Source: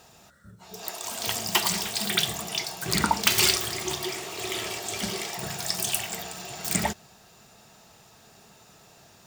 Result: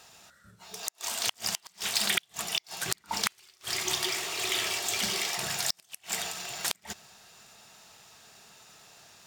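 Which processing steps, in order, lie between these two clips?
3.92–6.31 G.711 law mismatch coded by mu; tilt shelf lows -6 dB, about 870 Hz; flipped gate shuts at -7 dBFS, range -38 dB; decimation joined by straight lines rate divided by 2×; gain -2.5 dB

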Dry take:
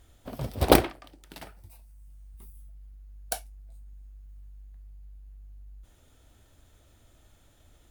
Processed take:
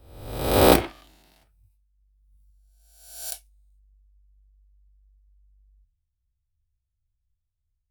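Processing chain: spectral swells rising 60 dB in 1.58 s; three-band expander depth 100%; gain -11.5 dB

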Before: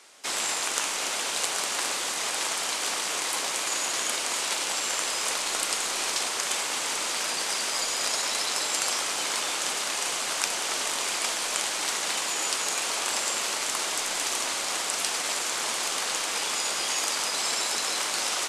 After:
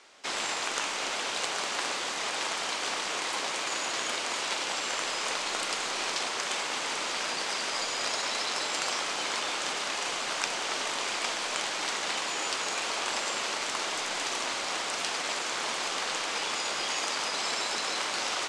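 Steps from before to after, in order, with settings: air absorption 88 m

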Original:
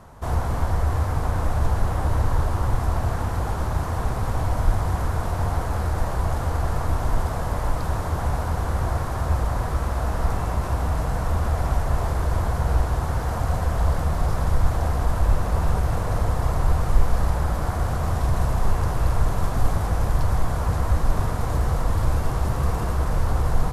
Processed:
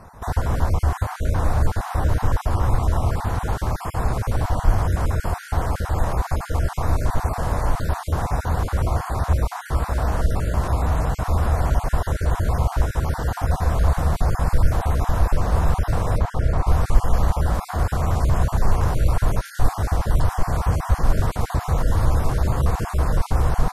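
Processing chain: random spectral dropouts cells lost 25%; 16.18–16.67 high shelf 5500 Hz -11.5 dB; gain +3 dB

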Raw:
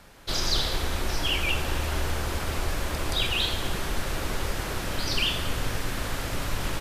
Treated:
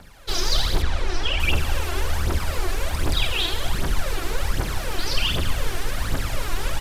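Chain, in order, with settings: phaser 1.3 Hz, delay 3 ms, feedback 64%; 0.82–1.4 air absorption 78 m

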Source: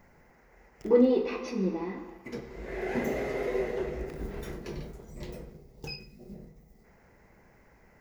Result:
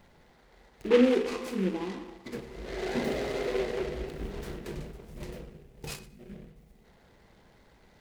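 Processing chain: noise-modulated delay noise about 1900 Hz, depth 0.062 ms

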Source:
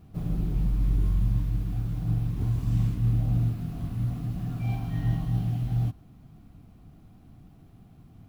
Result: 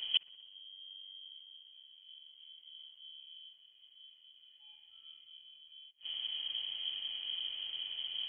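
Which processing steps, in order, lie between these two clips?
flipped gate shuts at -28 dBFS, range -40 dB; thinning echo 62 ms, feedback 78%, high-pass 820 Hz, level -19 dB; inverted band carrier 3200 Hz; gain +9.5 dB

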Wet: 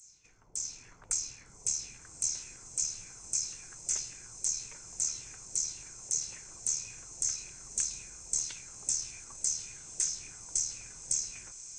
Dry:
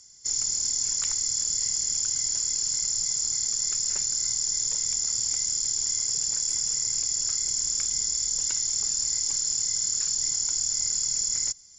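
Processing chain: opening faded in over 0.97 s; upward compressor, threshold -34 dBFS; LFO low-pass saw down 1.8 Hz 520–7600 Hz; formant shift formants +3 st; on a send: diffused feedback echo 1.227 s, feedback 58%, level -12.5 dB; on the sum: gain -8 dB

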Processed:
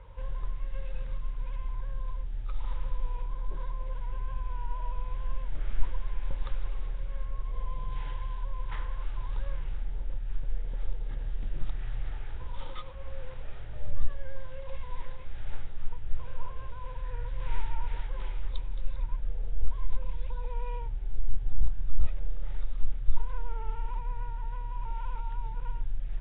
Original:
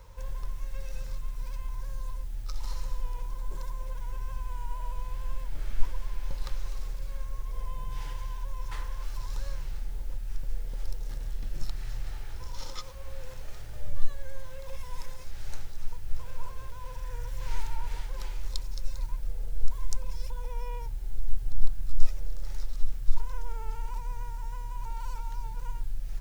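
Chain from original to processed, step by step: gain +1 dB; Nellymoser 16 kbps 8000 Hz

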